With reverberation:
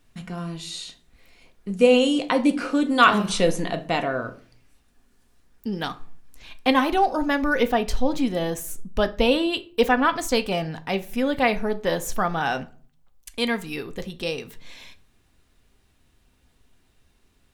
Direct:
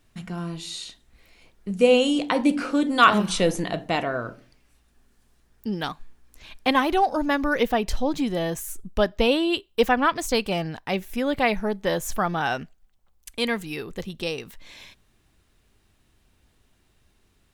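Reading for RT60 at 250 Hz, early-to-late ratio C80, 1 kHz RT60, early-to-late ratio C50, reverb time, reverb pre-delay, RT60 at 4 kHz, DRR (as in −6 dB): 0.65 s, 24.0 dB, 0.45 s, 18.5 dB, 0.45 s, 4 ms, 0.25 s, 9.0 dB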